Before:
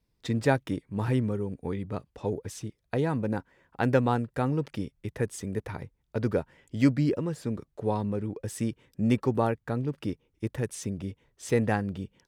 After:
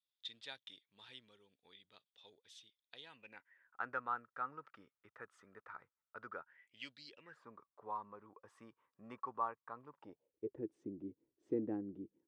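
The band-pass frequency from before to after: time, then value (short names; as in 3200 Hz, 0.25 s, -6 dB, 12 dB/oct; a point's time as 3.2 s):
band-pass, Q 7.3
3.01 s 3500 Hz
3.8 s 1300 Hz
6.41 s 1300 Hz
7.05 s 4500 Hz
7.41 s 1100 Hz
9.88 s 1100 Hz
10.63 s 320 Hz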